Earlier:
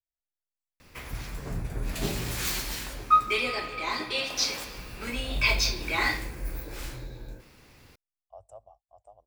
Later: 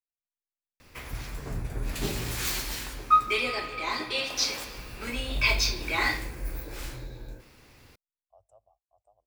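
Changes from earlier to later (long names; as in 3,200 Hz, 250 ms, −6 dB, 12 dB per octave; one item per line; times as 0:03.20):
speech −11.5 dB
master: add parametric band 180 Hz −4.5 dB 0.3 octaves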